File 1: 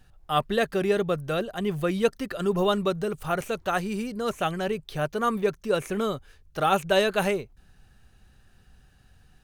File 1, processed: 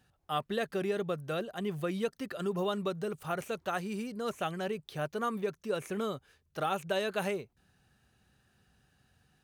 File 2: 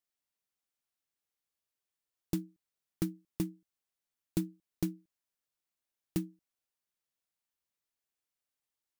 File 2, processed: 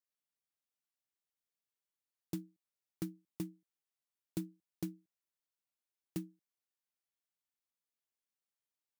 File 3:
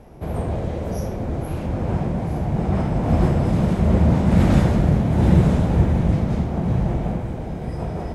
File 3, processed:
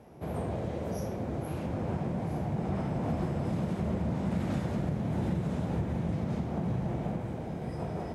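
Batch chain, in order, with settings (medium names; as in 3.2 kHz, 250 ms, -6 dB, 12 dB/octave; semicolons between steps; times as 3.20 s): high-pass 100 Hz 12 dB/octave; compression 6:1, threshold -21 dBFS; trim -6.5 dB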